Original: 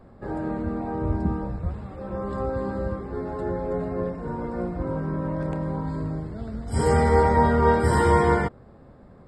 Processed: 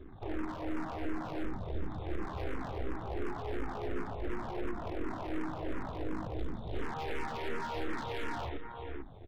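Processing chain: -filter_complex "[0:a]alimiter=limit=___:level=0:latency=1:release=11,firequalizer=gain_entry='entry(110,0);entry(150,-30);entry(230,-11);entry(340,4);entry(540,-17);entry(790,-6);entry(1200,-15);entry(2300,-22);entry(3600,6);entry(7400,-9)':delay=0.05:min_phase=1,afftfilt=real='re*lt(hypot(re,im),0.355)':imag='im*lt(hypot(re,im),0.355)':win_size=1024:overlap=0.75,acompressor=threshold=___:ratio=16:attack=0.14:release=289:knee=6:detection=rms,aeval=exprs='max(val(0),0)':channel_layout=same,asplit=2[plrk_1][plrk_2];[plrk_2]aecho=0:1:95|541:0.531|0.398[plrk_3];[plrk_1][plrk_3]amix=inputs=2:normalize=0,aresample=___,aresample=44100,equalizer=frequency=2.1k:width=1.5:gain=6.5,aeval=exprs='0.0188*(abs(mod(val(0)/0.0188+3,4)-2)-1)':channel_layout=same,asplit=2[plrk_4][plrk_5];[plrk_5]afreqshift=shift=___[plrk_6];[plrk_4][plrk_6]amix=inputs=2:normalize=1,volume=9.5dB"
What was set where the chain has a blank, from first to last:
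-13dB, -32dB, 8000, -2.8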